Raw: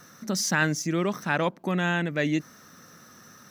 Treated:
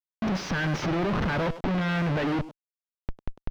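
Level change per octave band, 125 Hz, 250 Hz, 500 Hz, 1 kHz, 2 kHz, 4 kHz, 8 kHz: +2.5, +0.5, -1.0, -0.5, -4.0, -3.0, -14.5 dB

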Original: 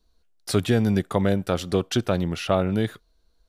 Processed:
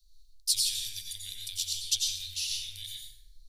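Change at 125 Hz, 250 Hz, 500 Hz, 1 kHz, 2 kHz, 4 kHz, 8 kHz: -29.0 dB, under -40 dB, under -40 dB, under -40 dB, -14.5 dB, +4.5 dB, +8.5 dB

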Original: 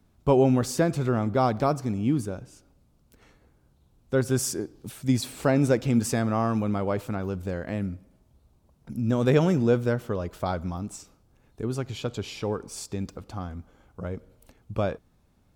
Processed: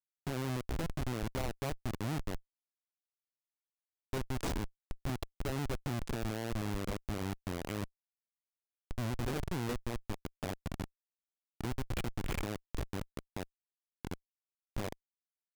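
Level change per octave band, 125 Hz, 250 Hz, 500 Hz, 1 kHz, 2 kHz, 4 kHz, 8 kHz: -11.0, -14.0, -16.5, -12.5, -8.0, -7.0, -13.0 dB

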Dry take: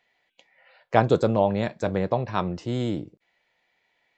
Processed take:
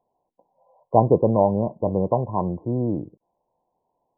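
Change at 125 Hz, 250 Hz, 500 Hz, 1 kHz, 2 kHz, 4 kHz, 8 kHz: +3.0 dB, +3.0 dB, +3.0 dB, +2.5 dB, under -40 dB, under -40 dB, n/a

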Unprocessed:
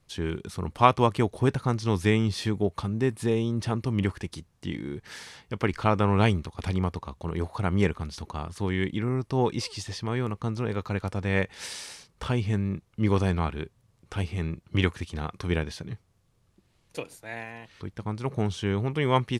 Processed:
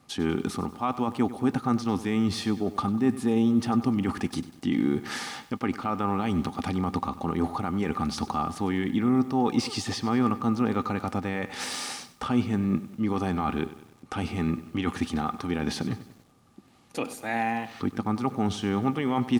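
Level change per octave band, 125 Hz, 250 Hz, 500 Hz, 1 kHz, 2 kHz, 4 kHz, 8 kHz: -5.0, +4.5, -3.0, +0.5, -2.0, +0.5, +3.0 dB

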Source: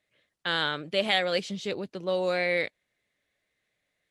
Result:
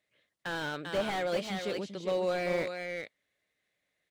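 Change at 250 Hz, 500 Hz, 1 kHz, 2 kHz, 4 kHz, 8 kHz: -2.0, -3.0, -3.5, -7.0, -10.5, -1.0 dB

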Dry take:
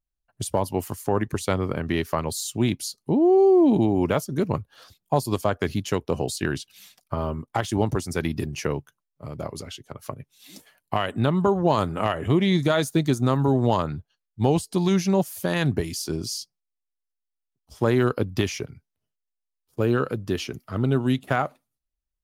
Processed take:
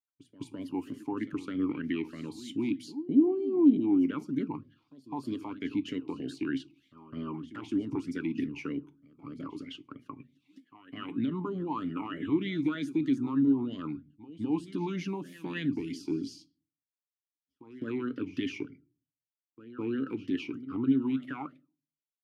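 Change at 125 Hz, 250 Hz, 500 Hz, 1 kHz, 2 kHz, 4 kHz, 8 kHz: -16.5 dB, -4.0 dB, -14.0 dB, -15.5 dB, -11.0 dB, -13.0 dB, under -20 dB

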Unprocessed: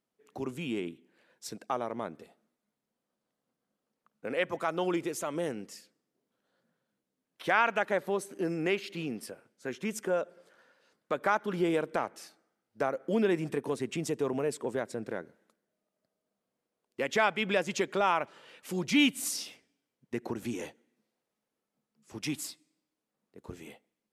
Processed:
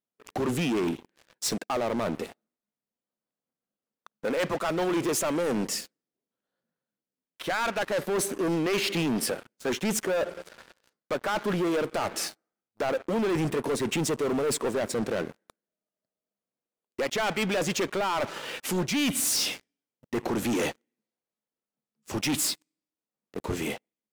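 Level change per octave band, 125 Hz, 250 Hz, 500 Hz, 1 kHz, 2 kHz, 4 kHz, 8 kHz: +6.5, +4.5, +4.0, +1.0, +1.0, +6.5, +10.5 dB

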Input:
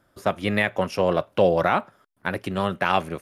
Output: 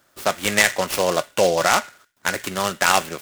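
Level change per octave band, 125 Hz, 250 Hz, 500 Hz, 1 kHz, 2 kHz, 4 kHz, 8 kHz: -4.5 dB, -3.0 dB, +1.0 dB, +3.0 dB, +6.5 dB, +10.0 dB, n/a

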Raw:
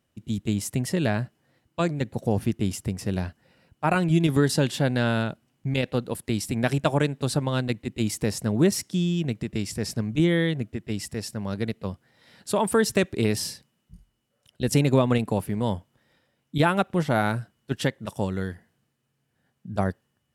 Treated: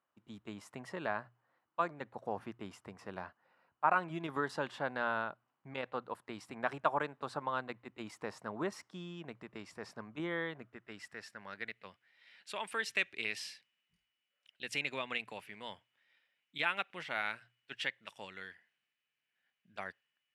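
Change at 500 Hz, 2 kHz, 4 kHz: -15.0, -6.0, -11.0 dB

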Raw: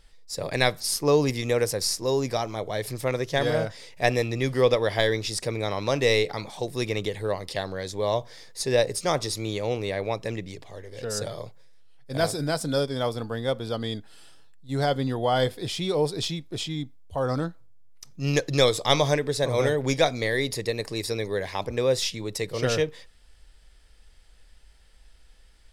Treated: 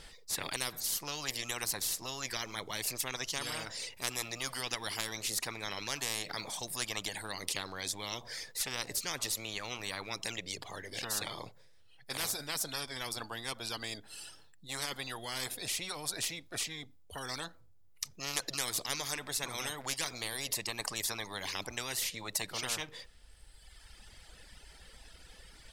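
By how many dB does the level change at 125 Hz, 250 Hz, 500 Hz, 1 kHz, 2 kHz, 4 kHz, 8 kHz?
-19.5, -17.5, -21.5, -12.0, -7.5, -5.5, -0.5 dB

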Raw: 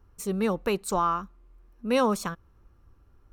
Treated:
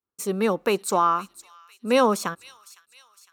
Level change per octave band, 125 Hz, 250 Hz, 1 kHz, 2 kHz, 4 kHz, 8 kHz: 0.0, +2.0, +5.0, +5.0, +5.0, +5.0 dB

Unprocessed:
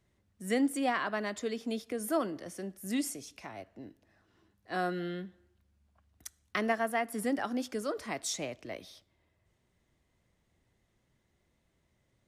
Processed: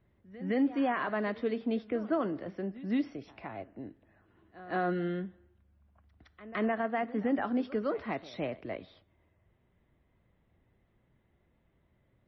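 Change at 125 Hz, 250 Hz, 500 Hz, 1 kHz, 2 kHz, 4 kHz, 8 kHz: +4.0 dB, +2.5 dB, +1.5 dB, 0.0 dB, -1.5 dB, -7.5 dB, under -30 dB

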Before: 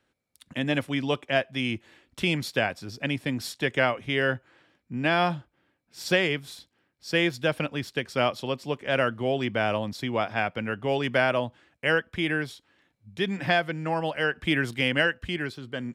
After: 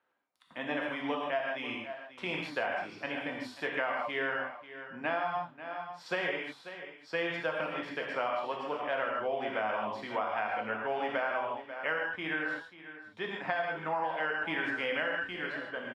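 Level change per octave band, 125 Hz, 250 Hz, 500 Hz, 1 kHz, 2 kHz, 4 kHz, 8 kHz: -19.0 dB, -11.5 dB, -7.0 dB, -3.0 dB, -5.5 dB, -11.0 dB, under -15 dB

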